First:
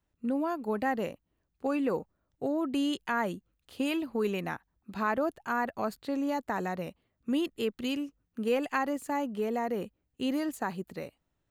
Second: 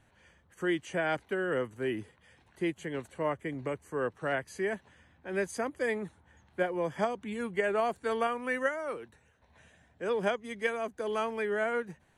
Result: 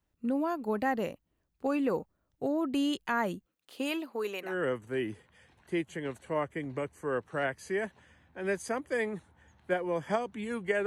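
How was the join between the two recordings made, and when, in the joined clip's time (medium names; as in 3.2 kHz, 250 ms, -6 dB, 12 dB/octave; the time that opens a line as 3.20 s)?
first
3.45–4.57 s: high-pass 210 Hz -> 640 Hz
4.49 s: go over to second from 1.38 s, crossfade 0.16 s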